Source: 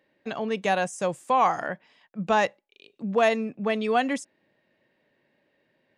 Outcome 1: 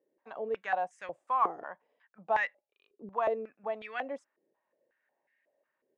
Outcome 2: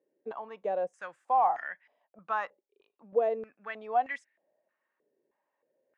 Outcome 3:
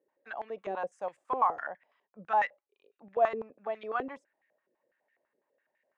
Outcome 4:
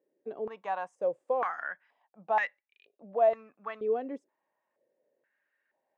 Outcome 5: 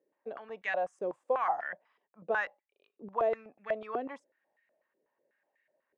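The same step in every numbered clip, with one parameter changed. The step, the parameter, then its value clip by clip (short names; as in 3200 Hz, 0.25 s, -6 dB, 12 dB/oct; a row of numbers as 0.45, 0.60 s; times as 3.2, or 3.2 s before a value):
stepped band-pass, rate: 5.5, 3.2, 12, 2.1, 8.1 Hz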